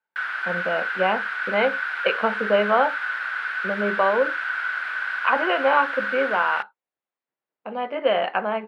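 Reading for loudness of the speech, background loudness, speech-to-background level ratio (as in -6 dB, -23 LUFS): -24.0 LUFS, -26.5 LUFS, 2.5 dB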